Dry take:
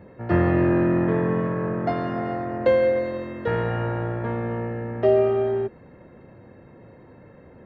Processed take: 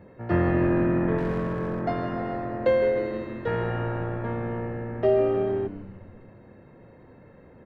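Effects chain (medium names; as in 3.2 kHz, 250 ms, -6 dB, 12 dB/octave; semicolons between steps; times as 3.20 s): 1.18–1.81 s: hard clipper -20.5 dBFS, distortion -23 dB; on a send: frequency-shifting echo 156 ms, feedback 60%, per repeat -100 Hz, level -14 dB; on the sum: trim -3 dB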